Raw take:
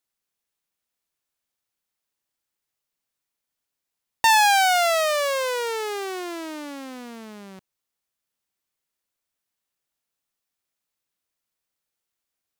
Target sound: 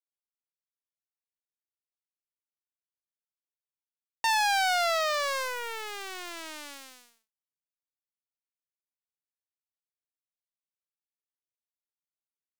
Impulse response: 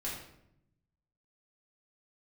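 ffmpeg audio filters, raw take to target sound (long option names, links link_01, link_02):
-filter_complex "[0:a]tremolo=f=0.6:d=0.33,acrossover=split=9100[link_01][link_02];[link_02]acompressor=threshold=-40dB:ratio=4:attack=1:release=60[link_03];[link_01][link_03]amix=inputs=2:normalize=0,asplit=2[link_04][link_05];[link_05]alimiter=limit=-20dB:level=0:latency=1,volume=-0.5dB[link_06];[link_04][link_06]amix=inputs=2:normalize=0,lowshelf=frequency=420:gain=-10,acrusher=bits=3:mix=0:aa=0.5,volume=-8dB"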